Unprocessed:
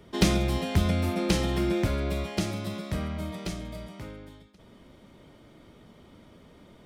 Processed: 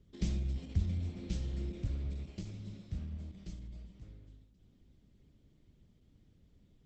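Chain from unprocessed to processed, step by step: passive tone stack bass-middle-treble 10-0-1; dark delay 0.21 s, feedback 41%, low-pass 1100 Hz, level -14 dB; gain +2.5 dB; Opus 10 kbps 48000 Hz

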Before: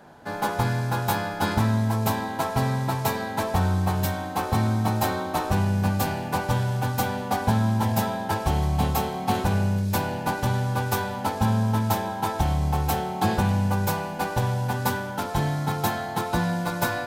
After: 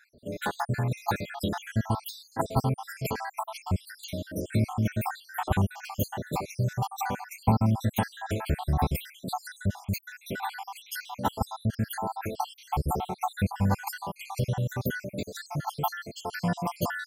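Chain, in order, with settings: random spectral dropouts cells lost 74%

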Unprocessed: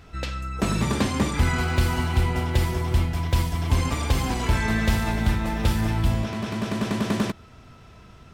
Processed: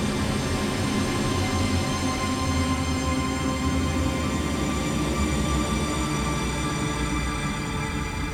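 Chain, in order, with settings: negative-ratio compressor -23 dBFS, ratio -0.5; Paulstretch 21×, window 0.25 s, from 1.01; lo-fi delay 0.109 s, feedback 80%, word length 8-bit, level -14.5 dB

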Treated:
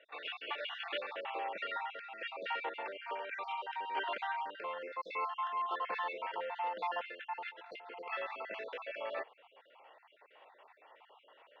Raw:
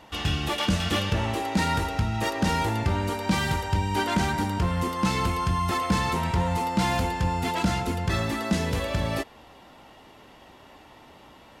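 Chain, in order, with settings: random spectral dropouts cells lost 44%; elliptic band-pass 480–2900 Hz, stop band 60 dB; 7.49–8.06 negative-ratio compressor -44 dBFS, ratio -1; gain -6.5 dB

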